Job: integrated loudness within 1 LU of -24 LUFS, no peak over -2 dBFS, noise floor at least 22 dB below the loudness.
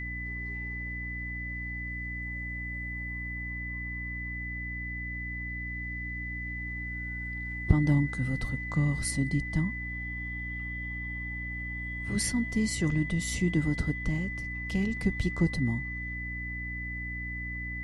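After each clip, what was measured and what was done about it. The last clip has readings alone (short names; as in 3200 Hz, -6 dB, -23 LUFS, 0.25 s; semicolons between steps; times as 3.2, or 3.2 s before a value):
hum 60 Hz; harmonics up to 300 Hz; hum level -36 dBFS; steady tone 2000 Hz; tone level -36 dBFS; loudness -32.0 LUFS; peak -8.5 dBFS; loudness target -24.0 LUFS
-> notches 60/120/180/240/300 Hz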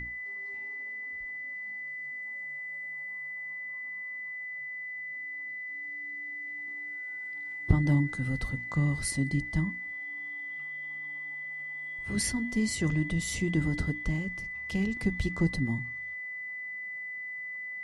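hum none; steady tone 2000 Hz; tone level -36 dBFS
-> notch 2000 Hz, Q 30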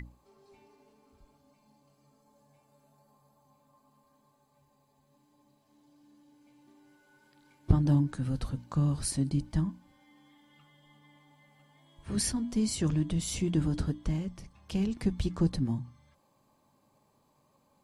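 steady tone none; loudness -31.0 LUFS; peak -10.0 dBFS; loudness target -24.0 LUFS
-> gain +7 dB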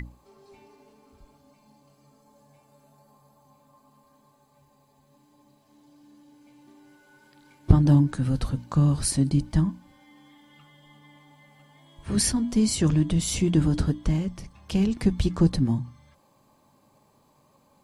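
loudness -24.0 LUFS; peak -3.0 dBFS; noise floor -63 dBFS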